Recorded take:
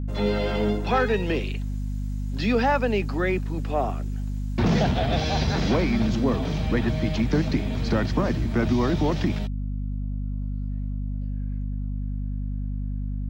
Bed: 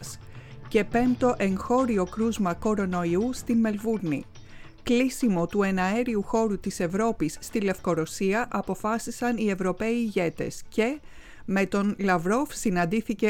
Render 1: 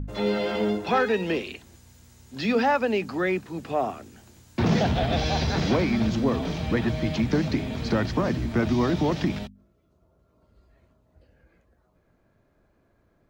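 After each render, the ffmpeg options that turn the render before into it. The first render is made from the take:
-af "bandreject=f=50:t=h:w=4,bandreject=f=100:t=h:w=4,bandreject=f=150:t=h:w=4,bandreject=f=200:t=h:w=4,bandreject=f=250:t=h:w=4"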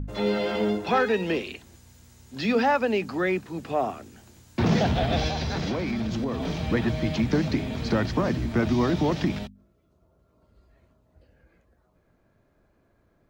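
-filter_complex "[0:a]asettb=1/sr,asplit=3[s0][s1][s2];[s0]atrim=end=5.284[s3];[s1]atrim=start=5.28:end=6.48,asetpts=PTS-STARTPTS,afade=t=in:d=0.004:c=qsin,afade=t=out:st=1.196:d=0.004:c=qsin,acompressor=threshold=0.0631:ratio=6:attack=3.2:release=140:knee=1:detection=peak[s4];[s2]atrim=start=6.476[s5];[s3][s4]acrossfade=d=0.004:c1=hsin:c2=qsin[s6];[s6][s5]acrossfade=d=0.004:c1=qsin:c2=hsin"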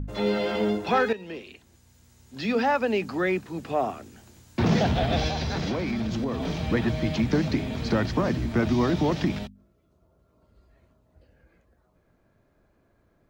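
-filter_complex "[0:a]asplit=2[s0][s1];[s0]atrim=end=1.13,asetpts=PTS-STARTPTS,afade=t=out:st=1.126:d=0.004:c=hsin:silence=0.199526[s2];[s1]atrim=start=1.13,asetpts=PTS-STARTPTS,afade=t=in:d=1.9:silence=0.199526[s3];[s2][s3]concat=n=2:v=0:a=1"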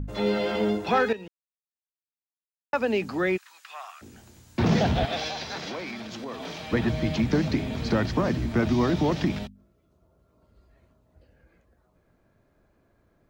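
-filter_complex "[0:a]asplit=3[s0][s1][s2];[s0]afade=t=out:st=3.36:d=0.02[s3];[s1]highpass=f=1200:w=0.5412,highpass=f=1200:w=1.3066,afade=t=in:st=3.36:d=0.02,afade=t=out:st=4.01:d=0.02[s4];[s2]afade=t=in:st=4.01:d=0.02[s5];[s3][s4][s5]amix=inputs=3:normalize=0,asettb=1/sr,asplit=3[s6][s7][s8];[s6]atrim=end=5.054[s9];[s7]atrim=start=5.05:end=6.73,asetpts=PTS-STARTPTS,afade=t=in:d=0.004:c=qsin,afade=t=out:st=1.676:d=0.004:c=qsin,highpass=f=740:p=1[s10];[s8]atrim=start=6.726[s11];[s9][s10]acrossfade=d=0.004:c1=hsin:c2=qsin[s12];[s12][s11]acrossfade=d=0.004:c1=qsin:c2=hsin,asplit=3[s13][s14][s15];[s13]atrim=end=1.28,asetpts=PTS-STARTPTS,afade=t=out:st=1.276:d=0.004:c=hsin[s16];[s14]atrim=start=1.28:end=2.73,asetpts=PTS-STARTPTS,volume=0[s17];[s15]atrim=start=2.73,asetpts=PTS-STARTPTS,afade=t=in:d=0.004:c=hsin[s18];[s16][s17][s18]concat=n=3:v=0:a=1"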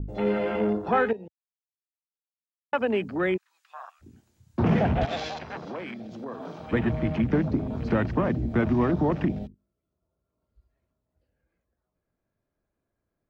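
-af "afwtdn=0.0178,adynamicequalizer=threshold=0.00708:dfrequency=2300:dqfactor=0.7:tfrequency=2300:tqfactor=0.7:attack=5:release=100:ratio=0.375:range=2.5:mode=cutabove:tftype=highshelf"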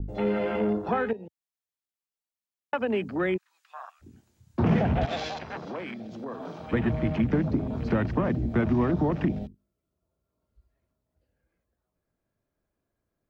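-filter_complex "[0:a]acrossover=split=250[s0][s1];[s1]acompressor=threshold=0.0631:ratio=6[s2];[s0][s2]amix=inputs=2:normalize=0"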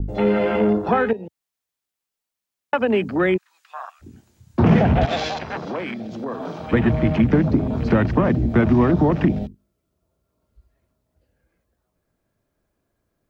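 -af "volume=2.51"

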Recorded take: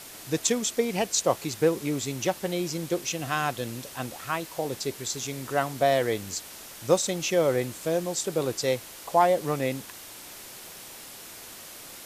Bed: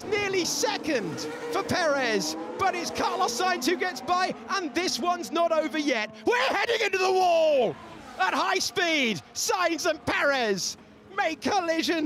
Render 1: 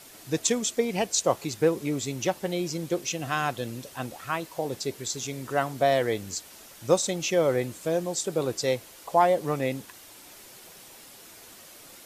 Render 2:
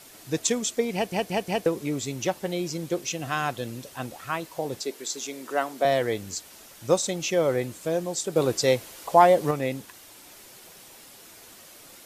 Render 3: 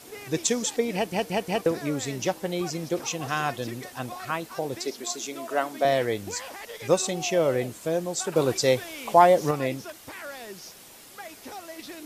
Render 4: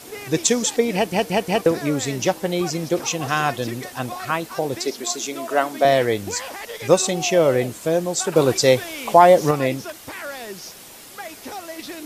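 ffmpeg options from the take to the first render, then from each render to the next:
-af "afftdn=nr=6:nf=-44"
-filter_complex "[0:a]asettb=1/sr,asplit=3[s0][s1][s2];[s0]atrim=end=4.814[s3];[s1]atrim=start=4.81:end=5.85,asetpts=PTS-STARTPTS,afade=t=in:d=0.004:c=qsin,afade=t=out:st=1.036:d=0.004:c=qsin,highpass=f=240:w=0.5412,highpass=f=240:w=1.3066[s4];[s2]atrim=start=5.846[s5];[s3][s4]acrossfade=d=0.004:c1=hsin:c2=qsin[s6];[s6][s5]acrossfade=d=0.004:c1=qsin:c2=hsin,asplit=7[s7][s8][s9][s10][s11][s12][s13];[s7]atrim=end=1.122[s14];[s8]atrim=start=0.938:end=1.122[s15];[s9]atrim=start=0.938:end=1.122[s16];[s10]atrim=start=0.938:end=1.122[s17];[s11]atrim=start=1.658:end=8.362[s18];[s12]atrim=start=8.358:end=9.512,asetpts=PTS-STARTPTS,volume=1.68[s19];[s13]atrim=start=9.508[s20];[s14][s15]acrossfade=d=0.004:c1=hsin:c2=hsin[s21];[s21][s16]acrossfade=d=0.004:c1=hsin:c2=hsin[s22];[s22][s17]acrossfade=d=0.004:c1=hsin:c2=hsin[s23];[s23][s18]acrossfade=d=0.004:c1=hsin:c2=hsin[s24];[s24][s19]acrossfade=d=0.004:c1=hsin:c2=hsin[s25];[s25][s20]acrossfade=d=0.004:c1=hsin:c2=hsin"
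-filter_complex "[1:a]volume=0.168[s0];[0:a][s0]amix=inputs=2:normalize=0"
-af "volume=2.11,alimiter=limit=0.891:level=0:latency=1"

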